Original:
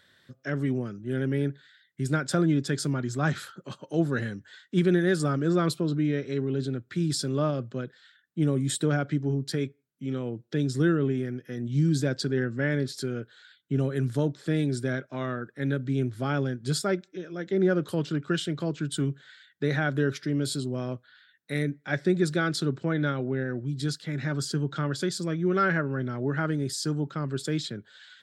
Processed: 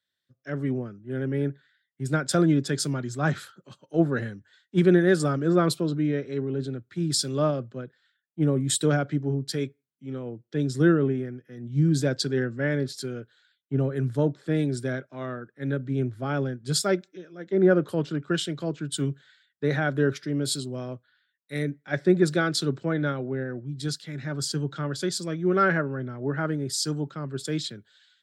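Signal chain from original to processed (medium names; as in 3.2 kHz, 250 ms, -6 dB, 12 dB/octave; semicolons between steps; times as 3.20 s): dynamic bell 600 Hz, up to +3 dB, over -36 dBFS, Q 0.99; three bands expanded up and down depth 70%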